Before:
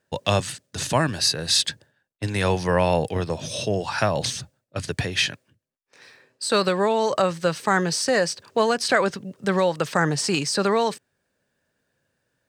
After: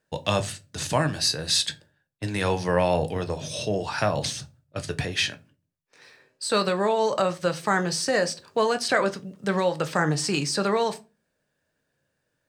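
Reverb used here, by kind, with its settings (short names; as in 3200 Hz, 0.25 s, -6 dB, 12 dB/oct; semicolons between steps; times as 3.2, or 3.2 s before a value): shoebox room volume 120 m³, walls furnished, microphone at 0.49 m; gain -3 dB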